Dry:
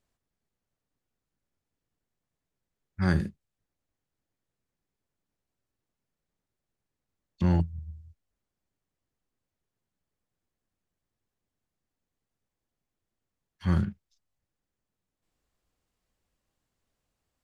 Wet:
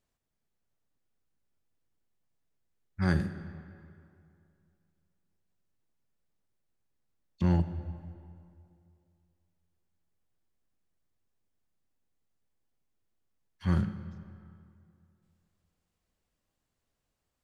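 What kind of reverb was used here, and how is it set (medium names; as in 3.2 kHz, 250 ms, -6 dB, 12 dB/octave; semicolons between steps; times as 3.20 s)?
algorithmic reverb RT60 2.5 s, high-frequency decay 0.7×, pre-delay 5 ms, DRR 11 dB; trim -2 dB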